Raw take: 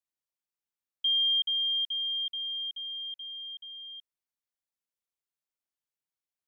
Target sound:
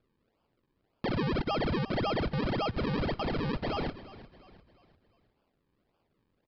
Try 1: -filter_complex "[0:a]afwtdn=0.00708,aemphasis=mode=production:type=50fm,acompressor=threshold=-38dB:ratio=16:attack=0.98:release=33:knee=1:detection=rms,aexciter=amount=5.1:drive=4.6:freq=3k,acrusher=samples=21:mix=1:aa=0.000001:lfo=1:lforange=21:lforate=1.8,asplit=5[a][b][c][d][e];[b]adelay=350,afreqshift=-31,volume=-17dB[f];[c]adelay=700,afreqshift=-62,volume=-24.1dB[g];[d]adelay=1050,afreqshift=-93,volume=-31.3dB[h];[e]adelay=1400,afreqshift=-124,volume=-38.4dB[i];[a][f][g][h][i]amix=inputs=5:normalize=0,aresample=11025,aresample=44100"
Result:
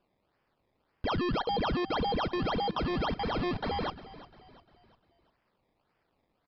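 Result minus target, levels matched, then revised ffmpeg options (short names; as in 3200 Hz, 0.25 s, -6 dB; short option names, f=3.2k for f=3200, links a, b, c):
decimation with a swept rate: distortion -24 dB
-filter_complex "[0:a]afwtdn=0.00708,aemphasis=mode=production:type=50fm,acompressor=threshold=-38dB:ratio=16:attack=0.98:release=33:knee=1:detection=rms,aexciter=amount=5.1:drive=4.6:freq=3k,acrusher=samples=44:mix=1:aa=0.000001:lfo=1:lforange=44:lforate=1.8,asplit=5[a][b][c][d][e];[b]adelay=350,afreqshift=-31,volume=-17dB[f];[c]adelay=700,afreqshift=-62,volume=-24.1dB[g];[d]adelay=1050,afreqshift=-93,volume=-31.3dB[h];[e]adelay=1400,afreqshift=-124,volume=-38.4dB[i];[a][f][g][h][i]amix=inputs=5:normalize=0,aresample=11025,aresample=44100"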